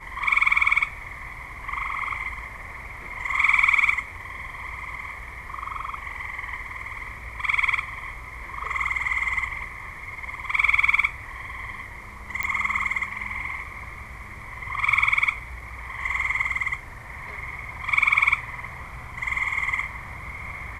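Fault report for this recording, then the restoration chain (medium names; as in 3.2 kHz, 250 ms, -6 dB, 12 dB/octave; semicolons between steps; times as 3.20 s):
12.43 s: pop -12 dBFS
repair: de-click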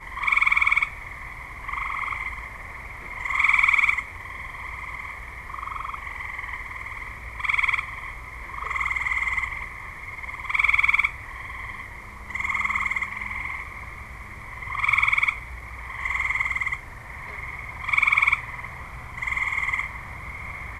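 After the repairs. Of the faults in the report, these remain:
nothing left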